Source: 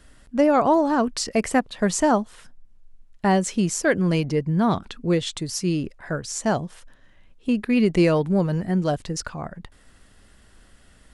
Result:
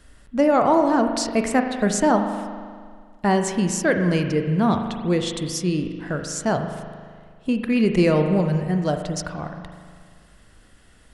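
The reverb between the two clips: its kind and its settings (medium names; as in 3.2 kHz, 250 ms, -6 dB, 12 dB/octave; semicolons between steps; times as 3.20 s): spring tank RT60 1.9 s, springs 39 ms, chirp 60 ms, DRR 5.5 dB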